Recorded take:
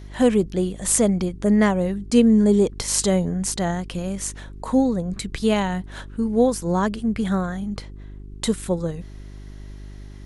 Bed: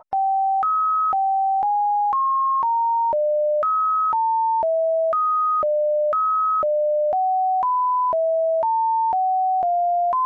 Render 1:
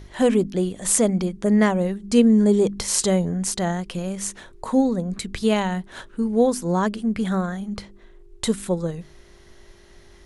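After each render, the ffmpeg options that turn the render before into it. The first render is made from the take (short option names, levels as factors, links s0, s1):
-af "bandreject=f=50:t=h:w=4,bandreject=f=100:t=h:w=4,bandreject=f=150:t=h:w=4,bandreject=f=200:t=h:w=4,bandreject=f=250:t=h:w=4,bandreject=f=300:t=h:w=4"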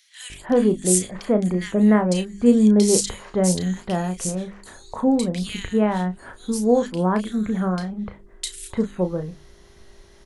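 -filter_complex "[0:a]asplit=2[s0][s1];[s1]adelay=33,volume=0.355[s2];[s0][s2]amix=inputs=2:normalize=0,acrossover=split=2100[s3][s4];[s3]adelay=300[s5];[s5][s4]amix=inputs=2:normalize=0"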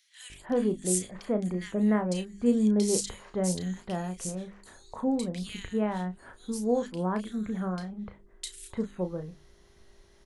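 -af "volume=0.355"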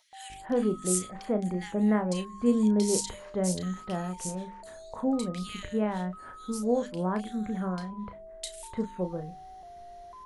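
-filter_complex "[1:a]volume=0.0422[s0];[0:a][s0]amix=inputs=2:normalize=0"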